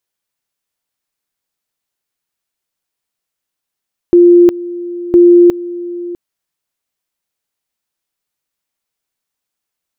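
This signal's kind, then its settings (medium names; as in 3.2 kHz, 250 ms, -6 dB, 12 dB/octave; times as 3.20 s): two-level tone 349 Hz -2 dBFS, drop 17.5 dB, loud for 0.36 s, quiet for 0.65 s, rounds 2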